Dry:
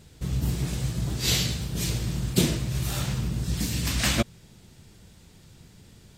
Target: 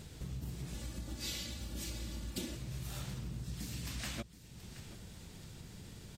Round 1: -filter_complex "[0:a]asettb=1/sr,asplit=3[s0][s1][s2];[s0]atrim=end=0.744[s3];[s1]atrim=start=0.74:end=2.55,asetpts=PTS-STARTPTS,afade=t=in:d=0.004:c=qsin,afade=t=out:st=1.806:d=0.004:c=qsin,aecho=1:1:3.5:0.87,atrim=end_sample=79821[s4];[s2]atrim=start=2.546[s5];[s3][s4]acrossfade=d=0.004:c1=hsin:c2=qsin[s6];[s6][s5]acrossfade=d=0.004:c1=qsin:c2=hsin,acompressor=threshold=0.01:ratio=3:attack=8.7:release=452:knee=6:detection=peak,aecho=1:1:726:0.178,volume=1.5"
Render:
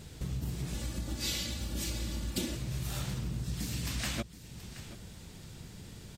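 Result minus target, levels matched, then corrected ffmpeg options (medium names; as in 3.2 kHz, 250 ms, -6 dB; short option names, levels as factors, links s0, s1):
compression: peak gain reduction -6.5 dB
-filter_complex "[0:a]asettb=1/sr,asplit=3[s0][s1][s2];[s0]atrim=end=0.744[s3];[s1]atrim=start=0.74:end=2.55,asetpts=PTS-STARTPTS,afade=t=in:d=0.004:c=qsin,afade=t=out:st=1.806:d=0.004:c=qsin,aecho=1:1:3.5:0.87,atrim=end_sample=79821[s4];[s2]atrim=start=2.546[s5];[s3][s4]acrossfade=d=0.004:c1=hsin:c2=qsin[s6];[s6][s5]acrossfade=d=0.004:c1=qsin:c2=hsin,acompressor=threshold=0.00335:ratio=3:attack=8.7:release=452:knee=6:detection=peak,aecho=1:1:726:0.178,volume=1.5"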